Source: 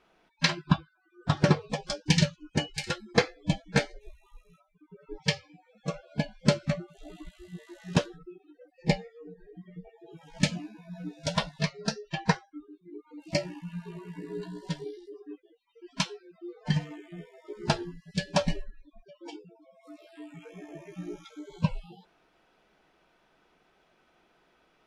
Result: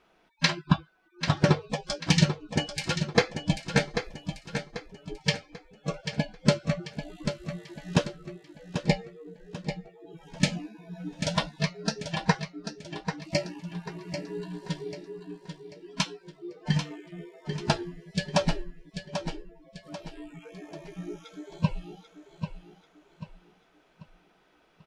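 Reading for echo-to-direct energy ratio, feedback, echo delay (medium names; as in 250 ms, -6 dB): -8.0 dB, 39%, 790 ms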